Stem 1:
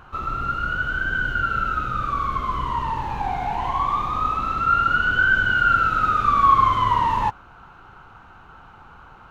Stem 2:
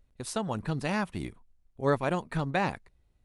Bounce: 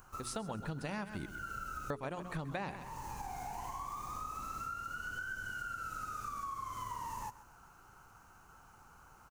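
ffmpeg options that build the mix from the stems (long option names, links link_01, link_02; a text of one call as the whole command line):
ffmpeg -i stem1.wav -i stem2.wav -filter_complex "[0:a]aexciter=amount=13.1:drive=5.7:freq=5400,acompressor=threshold=-25dB:ratio=6,volume=-14dB,asplit=2[link_01][link_02];[link_02]volume=-16.5dB[link_03];[1:a]bandreject=frequency=60:width_type=h:width=6,bandreject=frequency=120:width_type=h:width=6,bandreject=frequency=180:width_type=h:width=6,bandreject=frequency=240:width_type=h:width=6,bandreject=frequency=300:width_type=h:width=6,bandreject=frequency=360:width_type=h:width=6,bandreject=frequency=420:width_type=h:width=6,volume=-4dB,asplit=3[link_04][link_05][link_06];[link_04]atrim=end=1.26,asetpts=PTS-STARTPTS,afade=type=out:start_time=1.256:duration=0.004:curve=hsin[link_07];[link_05]atrim=start=1.26:end=1.9,asetpts=PTS-STARTPTS,volume=0[link_08];[link_06]atrim=start=1.9,asetpts=PTS-STARTPTS,afade=type=in:duration=0.004:curve=hsin[link_09];[link_07][link_08][link_09]concat=n=3:v=0:a=1,asplit=3[link_10][link_11][link_12];[link_11]volume=-14dB[link_13];[link_12]apad=whole_len=410142[link_14];[link_01][link_14]sidechaincompress=threshold=-45dB:ratio=8:attack=23:release=288[link_15];[link_03][link_13]amix=inputs=2:normalize=0,aecho=0:1:131|262|393|524|655:1|0.33|0.109|0.0359|0.0119[link_16];[link_15][link_10][link_16]amix=inputs=3:normalize=0,acompressor=threshold=-36dB:ratio=6" out.wav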